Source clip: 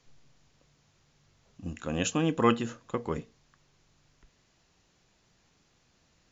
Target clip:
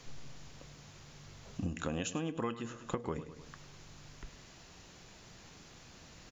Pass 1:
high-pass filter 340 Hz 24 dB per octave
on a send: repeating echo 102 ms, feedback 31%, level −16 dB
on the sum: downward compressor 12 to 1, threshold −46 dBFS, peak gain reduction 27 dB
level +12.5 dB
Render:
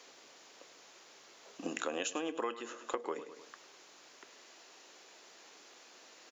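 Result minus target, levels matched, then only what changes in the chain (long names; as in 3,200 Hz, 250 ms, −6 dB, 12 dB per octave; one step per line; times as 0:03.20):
250 Hz band −6.0 dB
remove: high-pass filter 340 Hz 24 dB per octave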